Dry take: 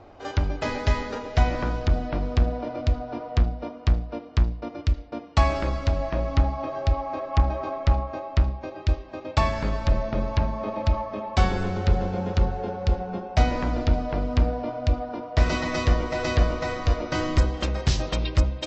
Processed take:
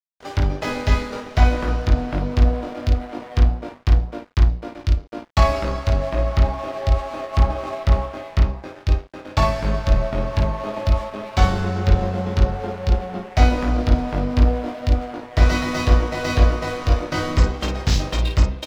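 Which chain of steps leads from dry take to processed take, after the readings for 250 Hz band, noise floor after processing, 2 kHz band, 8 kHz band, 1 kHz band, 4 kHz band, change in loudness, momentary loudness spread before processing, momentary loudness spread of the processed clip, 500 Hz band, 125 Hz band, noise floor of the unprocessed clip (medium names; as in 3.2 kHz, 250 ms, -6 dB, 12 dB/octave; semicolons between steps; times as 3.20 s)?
+4.0 dB, -41 dBFS, +4.0 dB, no reading, +3.0 dB, +4.0 dB, +4.5 dB, 4 LU, 6 LU, +3.5 dB, +4.5 dB, -42 dBFS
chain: crossover distortion -38 dBFS; early reflections 20 ms -3.5 dB, 53 ms -5 dB; trim +2.5 dB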